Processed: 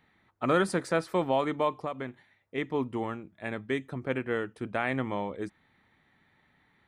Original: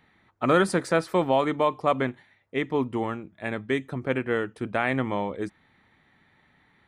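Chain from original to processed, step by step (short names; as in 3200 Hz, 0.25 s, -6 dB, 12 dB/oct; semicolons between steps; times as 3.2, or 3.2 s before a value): 1.74–2.58 compressor 5:1, threshold -27 dBFS, peak gain reduction 9.5 dB; gain -4.5 dB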